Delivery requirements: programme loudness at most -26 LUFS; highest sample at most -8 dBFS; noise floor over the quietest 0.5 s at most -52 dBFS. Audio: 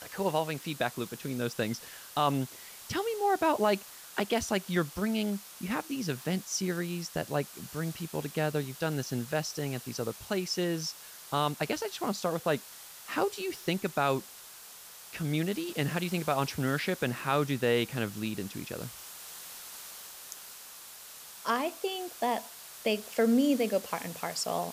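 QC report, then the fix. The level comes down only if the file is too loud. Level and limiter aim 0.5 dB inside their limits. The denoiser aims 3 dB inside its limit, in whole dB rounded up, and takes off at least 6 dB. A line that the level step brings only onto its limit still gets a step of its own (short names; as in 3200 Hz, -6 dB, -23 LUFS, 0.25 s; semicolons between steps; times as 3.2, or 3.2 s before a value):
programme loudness -32.0 LUFS: OK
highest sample -13.5 dBFS: OK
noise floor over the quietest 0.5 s -49 dBFS: fail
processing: denoiser 6 dB, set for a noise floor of -49 dBFS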